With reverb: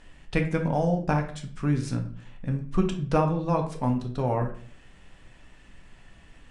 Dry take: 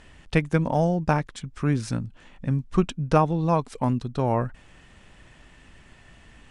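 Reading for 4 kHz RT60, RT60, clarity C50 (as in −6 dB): 0.35 s, 0.50 s, 9.0 dB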